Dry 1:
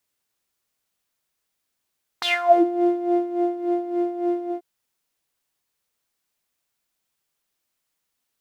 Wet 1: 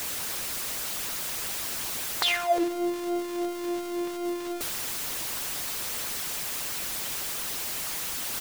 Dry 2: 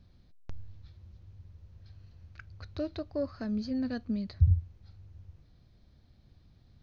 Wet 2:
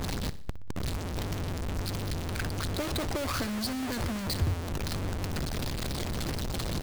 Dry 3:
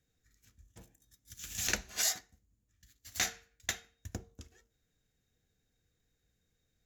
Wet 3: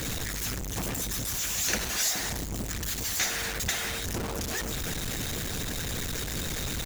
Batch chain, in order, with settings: jump at every zero crossing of -22 dBFS; feedback delay 61 ms, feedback 52%, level -14 dB; harmonic-percussive split harmonic -10 dB

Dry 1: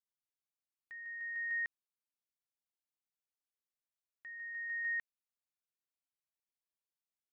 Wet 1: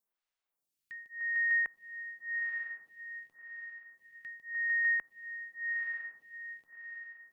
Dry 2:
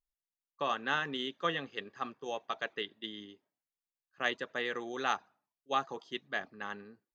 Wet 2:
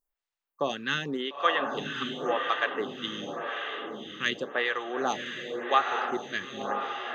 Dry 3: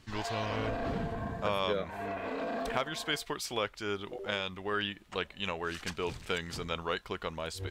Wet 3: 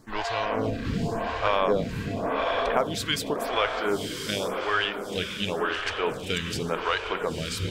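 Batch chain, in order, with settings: echo that smears into a reverb 943 ms, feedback 45%, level -4 dB; lamp-driven phase shifter 0.9 Hz; trim +9 dB

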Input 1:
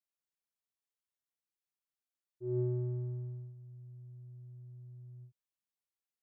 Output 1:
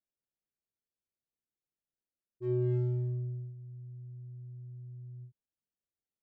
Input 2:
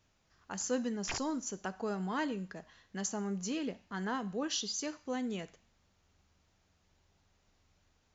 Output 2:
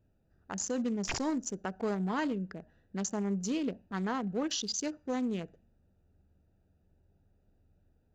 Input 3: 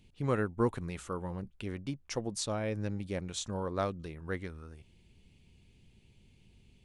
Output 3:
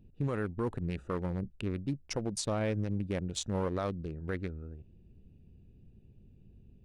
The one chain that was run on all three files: local Wiener filter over 41 samples; peak limiter -28.5 dBFS; trim +5 dB

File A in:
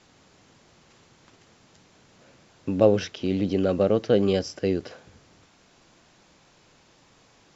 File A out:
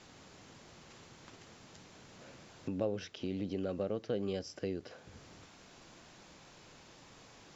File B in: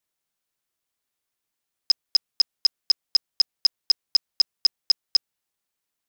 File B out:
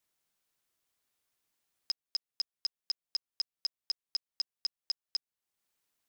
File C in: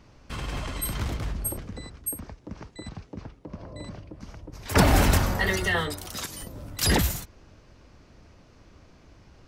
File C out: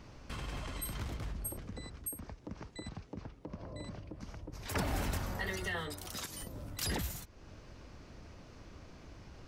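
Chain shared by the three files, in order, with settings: compression 2:1, threshold -47 dBFS; trim +1 dB

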